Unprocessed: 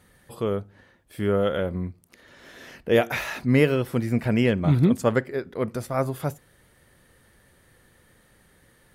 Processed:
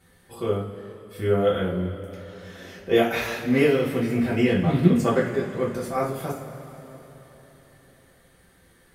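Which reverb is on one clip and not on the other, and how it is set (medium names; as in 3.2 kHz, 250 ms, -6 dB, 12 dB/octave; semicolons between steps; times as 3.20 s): two-slope reverb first 0.35 s, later 4 s, from -18 dB, DRR -6 dB; trim -6 dB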